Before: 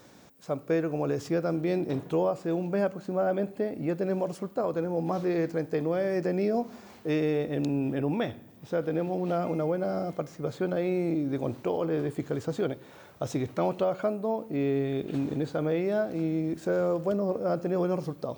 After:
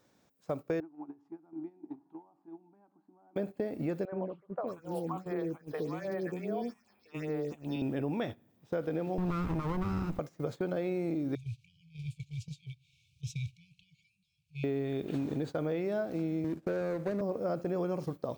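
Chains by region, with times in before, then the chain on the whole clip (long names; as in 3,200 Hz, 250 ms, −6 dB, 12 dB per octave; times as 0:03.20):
0:00.80–0:03.36: downward compressor 4 to 1, threshold −31 dBFS + pair of resonant band-passes 510 Hz, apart 1.5 octaves
0:04.05–0:07.82: low-shelf EQ 460 Hz −8 dB + all-pass phaser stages 6, 2.5 Hz, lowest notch 440–4,700 Hz + three-band delay without the direct sound mids, lows, highs 70/620 ms, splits 490/2,600 Hz
0:09.18–0:10.19: lower of the sound and its delayed copy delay 0.79 ms + low-shelf EQ 280 Hz +11 dB
0:11.35–0:14.64: upward compression, threshold −35 dBFS + linear-phase brick-wall band-stop 160–2,200 Hz + high-frequency loss of the air 52 metres
0:16.44–0:17.21: running median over 41 samples + multiband upward and downward compressor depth 40%
whole clip: downward compressor 3 to 1, threshold −34 dBFS; noise gate −40 dBFS, range −17 dB; level +2 dB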